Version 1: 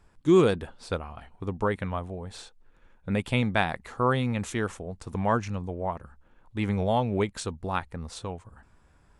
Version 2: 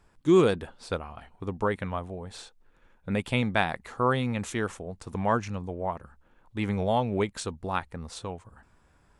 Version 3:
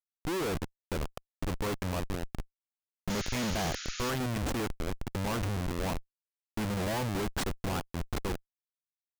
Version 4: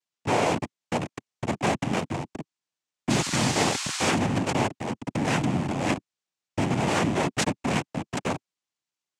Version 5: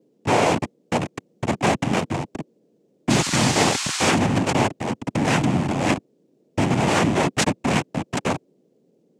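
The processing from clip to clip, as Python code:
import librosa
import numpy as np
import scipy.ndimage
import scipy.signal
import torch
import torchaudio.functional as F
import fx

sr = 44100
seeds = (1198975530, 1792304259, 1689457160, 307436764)

y1 = fx.low_shelf(x, sr, hz=130.0, db=-4.0)
y2 = fx.schmitt(y1, sr, flips_db=-33.5)
y2 = fx.spec_paint(y2, sr, seeds[0], shape='noise', start_s=3.09, length_s=1.01, low_hz=1200.0, high_hz=7100.0, level_db=-40.0)
y2 = F.gain(torch.from_numpy(y2), -1.5).numpy()
y3 = fx.noise_vocoder(y2, sr, seeds[1], bands=4)
y3 = F.gain(torch.from_numpy(y3), 8.5).numpy()
y4 = fx.dmg_noise_band(y3, sr, seeds[2], low_hz=150.0, high_hz=500.0, level_db=-67.0)
y4 = F.gain(torch.from_numpy(y4), 5.0).numpy()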